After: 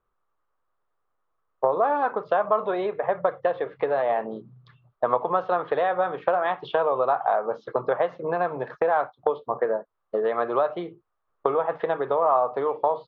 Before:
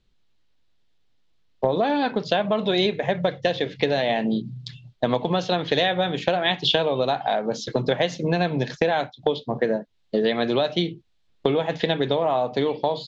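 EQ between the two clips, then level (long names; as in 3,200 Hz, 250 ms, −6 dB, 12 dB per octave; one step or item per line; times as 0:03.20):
low-pass with resonance 1,200 Hz, resonance Q 5.9
low shelf with overshoot 330 Hz −9 dB, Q 1.5
−4.5 dB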